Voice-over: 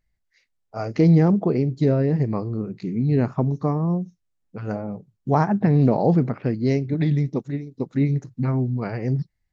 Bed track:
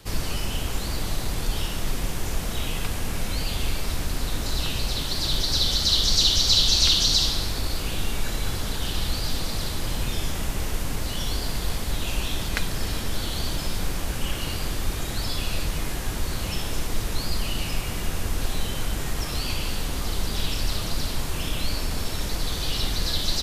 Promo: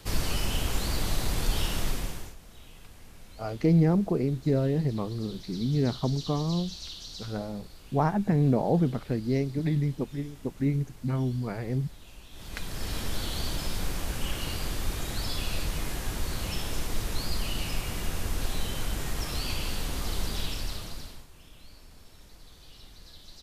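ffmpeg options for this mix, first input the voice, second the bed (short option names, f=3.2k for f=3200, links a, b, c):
-filter_complex "[0:a]adelay=2650,volume=-6dB[a];[1:a]volume=17dB,afade=t=out:st=1.79:d=0.56:silence=0.0891251,afade=t=in:st=12.31:d=0.71:silence=0.125893,afade=t=out:st=20.24:d=1.03:silence=0.0944061[b];[a][b]amix=inputs=2:normalize=0"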